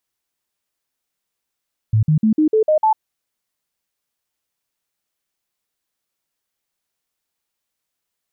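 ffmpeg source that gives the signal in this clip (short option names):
-f lavfi -i "aevalsrc='0.282*clip(min(mod(t,0.15),0.1-mod(t,0.15))/0.005,0,1)*sin(2*PI*109*pow(2,floor(t/0.15)/2)*mod(t,0.15))':d=1.05:s=44100"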